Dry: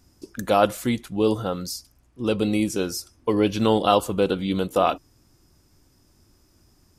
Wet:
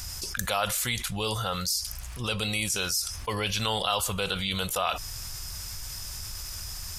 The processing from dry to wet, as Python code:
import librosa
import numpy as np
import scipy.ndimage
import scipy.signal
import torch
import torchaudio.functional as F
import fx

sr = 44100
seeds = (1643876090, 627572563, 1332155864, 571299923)

y = fx.tone_stack(x, sr, knobs='10-0-10')
y = fx.env_flatten(y, sr, amount_pct=70)